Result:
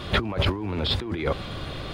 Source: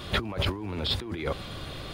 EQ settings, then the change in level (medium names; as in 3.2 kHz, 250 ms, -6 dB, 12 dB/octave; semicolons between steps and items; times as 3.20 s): low-pass 3.9 kHz 6 dB/octave; +5.0 dB